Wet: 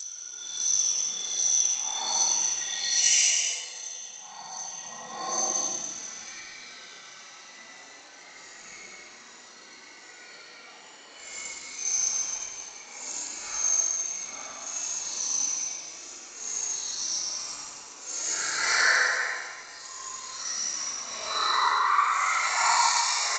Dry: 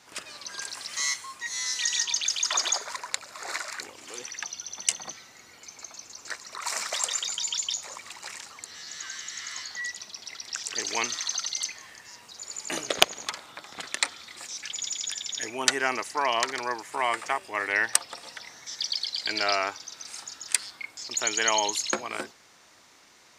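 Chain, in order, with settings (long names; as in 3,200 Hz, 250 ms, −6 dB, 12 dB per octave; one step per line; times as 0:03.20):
noise reduction from a noise print of the clip's start 9 dB
high-pass filter 260 Hz 12 dB per octave
in parallel at −5 dB: bit-depth reduction 8 bits, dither none
on the sum: downward compressor 16 to 1, threshold −34 dBFS, peak gain reduction 27 dB
extreme stretch with random phases 11×, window 0.05 s, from 0:04.60
reverb whose tail is shaped and stops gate 330 ms flat, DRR 2 dB
automatic gain control gain up to 11.5 dB
G.722 64 kbit/s 16,000 Hz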